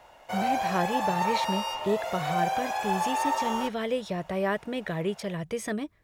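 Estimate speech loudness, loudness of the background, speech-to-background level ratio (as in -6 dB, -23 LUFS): -32.0 LUFS, -29.5 LUFS, -2.5 dB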